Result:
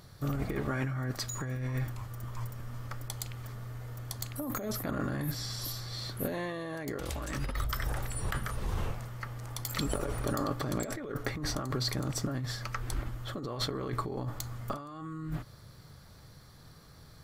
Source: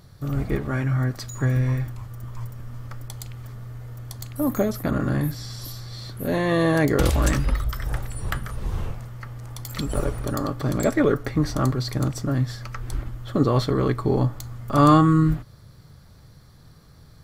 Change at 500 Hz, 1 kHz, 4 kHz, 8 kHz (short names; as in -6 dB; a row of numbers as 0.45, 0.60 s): -13.0, -12.5, -2.5, -3.0 dB